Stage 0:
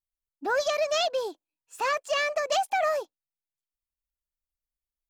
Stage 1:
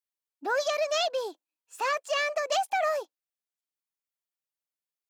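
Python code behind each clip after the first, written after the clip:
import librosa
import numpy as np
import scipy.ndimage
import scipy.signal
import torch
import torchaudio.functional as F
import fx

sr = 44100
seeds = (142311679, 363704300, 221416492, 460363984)

y = scipy.signal.sosfilt(scipy.signal.bessel(2, 290.0, 'highpass', norm='mag', fs=sr, output='sos'), x)
y = F.gain(torch.from_numpy(y), -1.0).numpy()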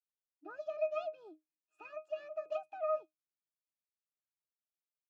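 y = fx.tremolo_shape(x, sr, shape='triangle', hz=4.1, depth_pct=40)
y = fx.octave_resonator(y, sr, note='D#', decay_s=0.15)
y = F.gain(torch.from_numpy(y), 1.0).numpy()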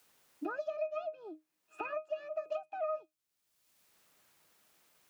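y = fx.band_squash(x, sr, depth_pct=100)
y = F.gain(torch.from_numpy(y), 1.0).numpy()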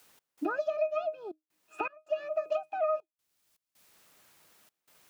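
y = fx.step_gate(x, sr, bpm=80, pattern='x.xxxxx.x', floor_db=-24.0, edge_ms=4.5)
y = F.gain(torch.from_numpy(y), 6.5).numpy()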